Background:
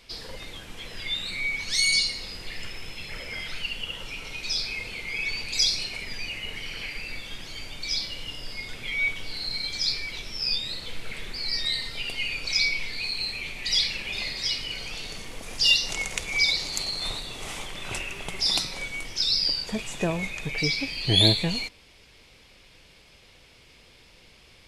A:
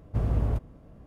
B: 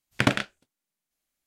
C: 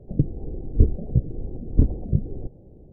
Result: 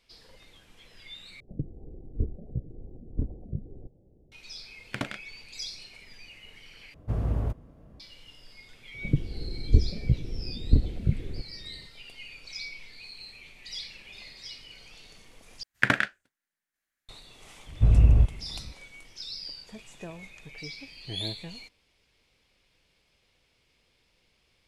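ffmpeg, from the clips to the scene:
-filter_complex "[3:a]asplit=2[s0][s1];[2:a]asplit=2[s2][s3];[1:a]asplit=2[s4][s5];[0:a]volume=0.178[s6];[s1]lowshelf=f=180:g=5[s7];[s3]equalizer=f=1700:t=o:w=0.71:g=14[s8];[s5]aemphasis=mode=reproduction:type=bsi[s9];[s6]asplit=4[s10][s11][s12][s13];[s10]atrim=end=1.404[s14];[s0]atrim=end=2.92,asetpts=PTS-STARTPTS,volume=0.237[s15];[s11]atrim=start=4.316:end=6.944[s16];[s4]atrim=end=1.06,asetpts=PTS-STARTPTS,volume=0.794[s17];[s12]atrim=start=7.996:end=15.634[s18];[s8]atrim=end=1.46,asetpts=PTS-STARTPTS,volume=0.473[s19];[s13]atrim=start=17.086[s20];[s2]atrim=end=1.46,asetpts=PTS-STARTPTS,volume=0.266,afade=t=in:d=0.004:c=hsin,afade=t=out:st=1.456:d=0.004:c=hsin,adelay=4740[s21];[s7]atrim=end=2.92,asetpts=PTS-STARTPTS,volume=0.447,afade=t=in:d=0.004:c=hsin,afade=t=out:st=2.916:d=0.004:c=hsin,adelay=8940[s22];[s9]atrim=end=1.06,asetpts=PTS-STARTPTS,volume=0.631,afade=t=in:d=0.004:c=hsin,afade=t=out:st=1.056:d=0.004:c=hsin,adelay=17670[s23];[s14][s15]acrossfade=d=0.004:c1=hsin:c2=hsin[s24];[s24][s16]acrossfade=d=0.004:c1=hsin:c2=hsin[s25];[s25][s17]acrossfade=d=0.004:c1=hsin:c2=hsin[s26];[s26][s18]acrossfade=d=0.004:c1=hsin:c2=hsin[s27];[s27][s19]acrossfade=d=0.004:c1=hsin:c2=hsin[s28];[s28][s20]acrossfade=d=0.004:c1=hsin:c2=hsin[s29];[s29][s21][s22][s23]amix=inputs=4:normalize=0"

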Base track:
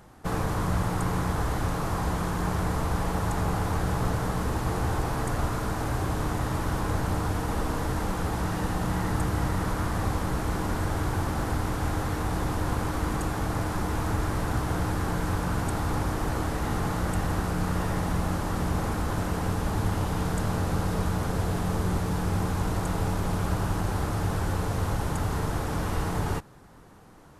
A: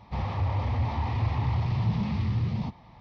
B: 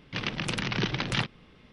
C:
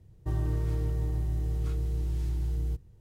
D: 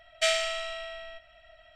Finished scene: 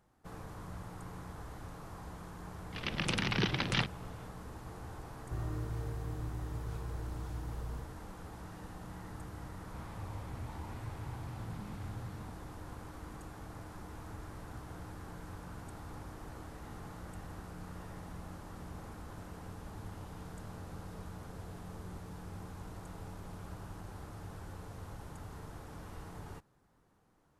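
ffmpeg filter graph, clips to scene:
-filter_complex "[0:a]volume=0.112[s0];[2:a]dynaudnorm=f=180:g=3:m=3.76[s1];[3:a]asplit=2[s2][s3];[s3]adelay=42,volume=0.398[s4];[s2][s4]amix=inputs=2:normalize=0[s5];[s1]atrim=end=1.72,asetpts=PTS-STARTPTS,volume=0.211,afade=t=in:d=0.004:c=hsin,afade=t=out:st=1.716:d=0.004:c=hsin,adelay=2600[s6];[s5]atrim=end=3,asetpts=PTS-STARTPTS,volume=0.398,afade=t=in:d=0.004:c=hsin,afade=t=out:st=2.996:d=0.004:c=hsin,adelay=222705S[s7];[1:a]atrim=end=3,asetpts=PTS-STARTPTS,volume=0.133,afade=t=in:d=0.004:c=hsin,afade=t=out:st=2.996:d=0.004:c=hsin,adelay=9610[s8];[s0][s6][s7][s8]amix=inputs=4:normalize=0"

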